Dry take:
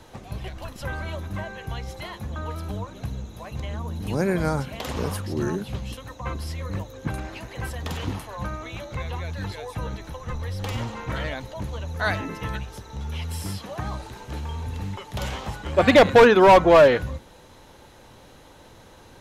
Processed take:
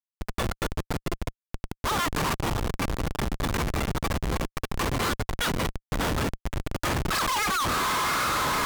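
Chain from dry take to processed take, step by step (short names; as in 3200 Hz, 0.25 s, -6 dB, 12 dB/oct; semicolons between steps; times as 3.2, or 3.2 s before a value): steep high-pass 400 Hz 96 dB/oct; diffused feedback echo 1.471 s, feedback 72%, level -10 dB; Schmitt trigger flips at -29.5 dBFS; wide varispeed 2.22×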